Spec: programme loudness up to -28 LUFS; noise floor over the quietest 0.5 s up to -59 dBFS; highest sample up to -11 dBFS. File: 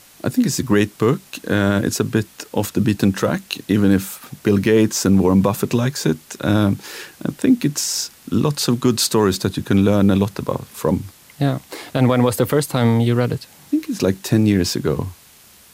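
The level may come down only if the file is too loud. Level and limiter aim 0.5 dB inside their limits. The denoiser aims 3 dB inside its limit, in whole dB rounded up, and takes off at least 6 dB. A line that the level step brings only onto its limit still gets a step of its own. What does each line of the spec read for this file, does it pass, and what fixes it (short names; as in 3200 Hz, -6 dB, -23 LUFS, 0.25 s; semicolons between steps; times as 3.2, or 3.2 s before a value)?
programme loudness -18.5 LUFS: fail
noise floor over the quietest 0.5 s -48 dBFS: fail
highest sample -5.0 dBFS: fail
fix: denoiser 6 dB, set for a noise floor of -48 dBFS; gain -10 dB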